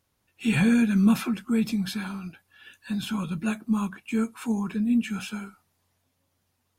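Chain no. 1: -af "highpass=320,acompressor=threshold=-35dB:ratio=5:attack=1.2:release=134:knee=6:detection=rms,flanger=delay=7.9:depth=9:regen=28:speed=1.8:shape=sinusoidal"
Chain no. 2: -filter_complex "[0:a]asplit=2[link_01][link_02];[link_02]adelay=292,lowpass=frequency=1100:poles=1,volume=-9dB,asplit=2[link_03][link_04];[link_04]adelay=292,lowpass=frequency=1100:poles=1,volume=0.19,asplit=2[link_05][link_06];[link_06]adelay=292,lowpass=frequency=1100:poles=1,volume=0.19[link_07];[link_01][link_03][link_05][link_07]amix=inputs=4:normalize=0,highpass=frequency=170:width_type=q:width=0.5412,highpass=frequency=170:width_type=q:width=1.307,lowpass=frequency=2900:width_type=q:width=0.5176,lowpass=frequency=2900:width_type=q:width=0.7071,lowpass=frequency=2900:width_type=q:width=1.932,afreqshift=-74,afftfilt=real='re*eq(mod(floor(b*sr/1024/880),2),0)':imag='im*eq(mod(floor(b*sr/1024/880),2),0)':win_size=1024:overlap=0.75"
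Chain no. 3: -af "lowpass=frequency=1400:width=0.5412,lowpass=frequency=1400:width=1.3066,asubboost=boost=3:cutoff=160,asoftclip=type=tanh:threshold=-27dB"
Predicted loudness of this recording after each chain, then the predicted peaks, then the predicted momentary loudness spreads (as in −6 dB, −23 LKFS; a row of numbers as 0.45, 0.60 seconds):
−44.0, −27.0, −33.0 LKFS; −31.0, −11.5, −27.0 dBFS; 9, 14, 9 LU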